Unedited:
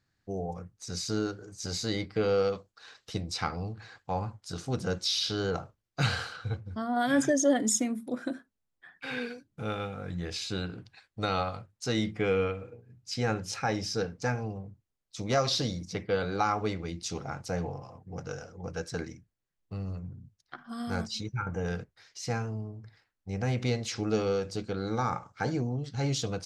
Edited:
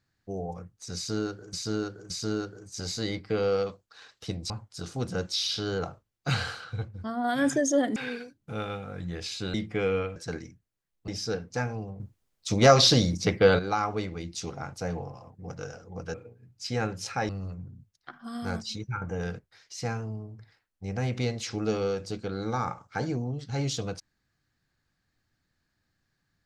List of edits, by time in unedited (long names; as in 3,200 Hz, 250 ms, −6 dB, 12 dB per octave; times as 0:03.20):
0:00.96–0:01.53: repeat, 3 plays
0:03.36–0:04.22: remove
0:07.68–0:09.06: remove
0:10.64–0:11.99: remove
0:12.61–0:13.76: swap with 0:18.82–0:19.74
0:14.68–0:16.27: clip gain +9.5 dB